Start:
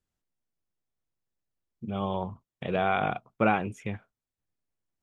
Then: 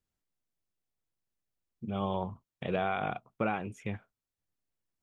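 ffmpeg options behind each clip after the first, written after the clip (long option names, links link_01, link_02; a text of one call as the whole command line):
ffmpeg -i in.wav -af "alimiter=limit=-16.5dB:level=0:latency=1:release=412,volume=-2dB" out.wav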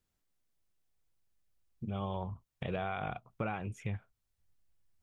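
ffmpeg -i in.wav -af "asubboost=boost=4.5:cutoff=120,acompressor=threshold=-44dB:ratio=2,volume=4dB" out.wav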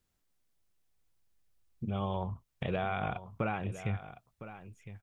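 ffmpeg -i in.wav -af "aecho=1:1:1009:0.211,volume=3dB" out.wav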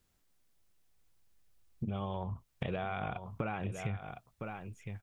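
ffmpeg -i in.wav -af "acompressor=threshold=-37dB:ratio=10,volume=4.5dB" out.wav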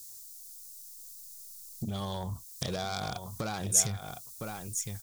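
ffmpeg -i in.wav -af "asoftclip=type=tanh:threshold=-29dB,aexciter=amount=14.2:drive=8.7:freq=4200,volume=3dB" out.wav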